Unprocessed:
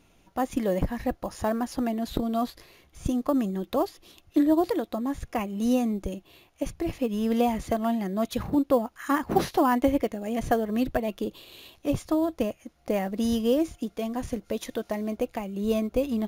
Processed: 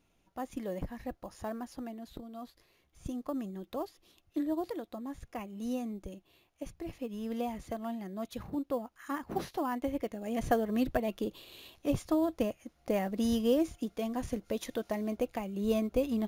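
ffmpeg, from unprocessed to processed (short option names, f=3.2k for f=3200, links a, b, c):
-af "volume=3.5dB,afade=t=out:st=1.56:d=0.74:silence=0.421697,afade=t=in:st=2.3:d=0.81:silence=0.421697,afade=t=in:st=9.89:d=0.55:silence=0.421697"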